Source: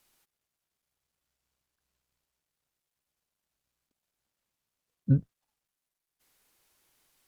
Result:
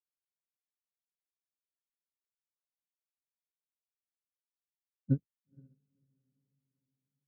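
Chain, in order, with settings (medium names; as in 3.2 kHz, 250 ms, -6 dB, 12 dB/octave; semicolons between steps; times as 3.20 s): dynamic bell 360 Hz, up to +7 dB, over -37 dBFS, Q 0.7; echo that smears into a reverb 493 ms, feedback 50%, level -8 dB; upward expansion 2.5:1, over -36 dBFS; trim -7.5 dB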